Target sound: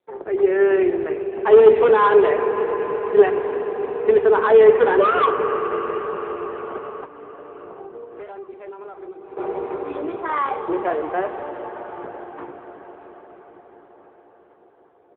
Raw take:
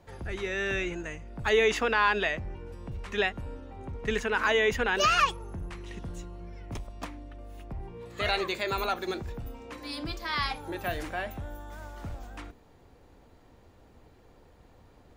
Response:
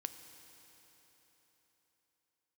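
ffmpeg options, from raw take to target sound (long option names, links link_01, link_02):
-filter_complex "[0:a]agate=range=-27dB:threshold=-53dB:ratio=16:detection=peak,aeval=exprs='0.266*(cos(1*acos(clip(val(0)/0.266,-1,1)))-cos(1*PI/2))+0.0075*(cos(2*acos(clip(val(0)/0.266,-1,1)))-cos(2*PI/2))+0.0211*(cos(6*acos(clip(val(0)/0.266,-1,1)))-cos(6*PI/2))':channel_layout=same,lowpass=1600,asplit=4[link_01][link_02][link_03][link_04];[link_02]adelay=149,afreqshift=-46,volume=-23dB[link_05];[link_03]adelay=298,afreqshift=-92,volume=-31dB[link_06];[link_04]adelay=447,afreqshift=-138,volume=-38.9dB[link_07];[link_01][link_05][link_06][link_07]amix=inputs=4:normalize=0[link_08];[1:a]atrim=start_sample=2205,asetrate=22932,aresample=44100[link_09];[link_08][link_09]afir=irnorm=-1:irlink=0,aeval=exprs='0.112*(abs(mod(val(0)/0.112+3,4)-2)-1)':channel_layout=same,highpass=frequency=400:width_type=q:width=4.9,equalizer=frequency=980:width=1.5:gain=6.5,asettb=1/sr,asplit=3[link_10][link_11][link_12];[link_10]atrim=end=7.034[link_13];[link_11]atrim=start=7.03:end=9.37,asetpts=PTS-STARTPTS,afade=type=in:duration=0.004:curve=qsin,afade=type=out:start_time=2.336:duration=0.004:curve=qsin,acompressor=threshold=-37dB:ratio=16[link_14];[link_12]atrim=start=9.366[link_15];[link_13][link_14]acrossfade=duration=0.004:curve1=hsin:curve2=qsin[link_16];[link_16][link_15]acrossfade=duration=0.004:curve1=qsin:curve2=hsin,volume=4.5dB" -ar 8000 -c:a libopencore_amrnb -b:a 6700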